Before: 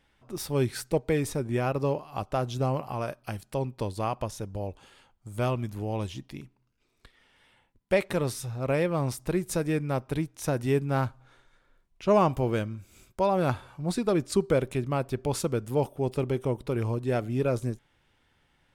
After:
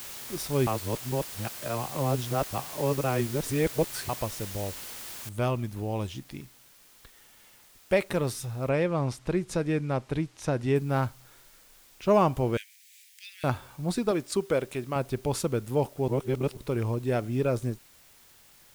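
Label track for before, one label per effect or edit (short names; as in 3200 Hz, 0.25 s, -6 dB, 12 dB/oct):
0.670000	4.090000	reverse
5.290000	5.290000	noise floor step -41 dB -57 dB
8.690000	10.760000	Bessel low-pass 5900 Hz
12.570000	13.440000	steep high-pass 1800 Hz 72 dB/oct
14.110000	14.960000	low shelf 200 Hz -11 dB
16.080000	16.570000	reverse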